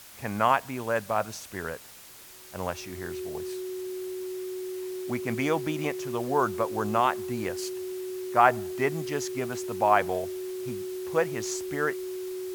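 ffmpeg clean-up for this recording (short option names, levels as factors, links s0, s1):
-af "bandreject=f=370:w=30,afwtdn=0.004"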